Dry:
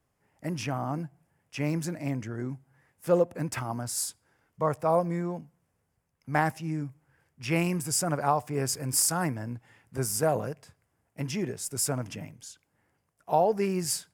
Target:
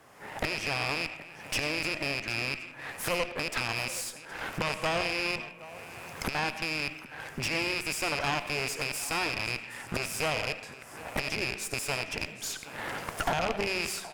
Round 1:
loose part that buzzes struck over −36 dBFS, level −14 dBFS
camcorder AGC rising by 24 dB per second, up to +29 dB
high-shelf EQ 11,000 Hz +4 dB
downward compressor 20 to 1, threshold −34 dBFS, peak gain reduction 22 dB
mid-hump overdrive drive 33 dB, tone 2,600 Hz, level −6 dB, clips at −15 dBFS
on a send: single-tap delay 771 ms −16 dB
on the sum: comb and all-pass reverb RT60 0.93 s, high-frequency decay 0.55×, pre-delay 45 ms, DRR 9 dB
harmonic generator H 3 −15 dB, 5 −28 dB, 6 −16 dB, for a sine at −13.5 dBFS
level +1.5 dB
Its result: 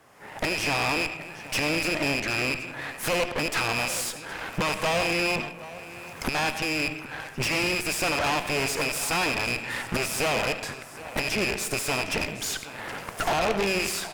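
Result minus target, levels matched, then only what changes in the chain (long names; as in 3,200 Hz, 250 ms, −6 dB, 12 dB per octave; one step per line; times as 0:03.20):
downward compressor: peak gain reduction −11.5 dB
change: downward compressor 20 to 1, threshold −46 dBFS, peak gain reduction 33.5 dB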